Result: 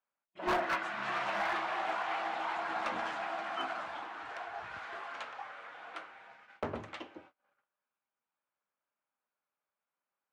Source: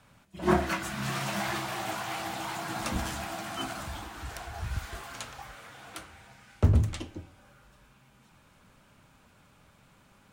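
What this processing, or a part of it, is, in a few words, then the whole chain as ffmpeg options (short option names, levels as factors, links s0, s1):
walkie-talkie: -af "highpass=540,lowpass=2200,asoftclip=type=hard:threshold=0.0376,agate=range=0.0316:threshold=0.00126:ratio=16:detection=peak,volume=1.26"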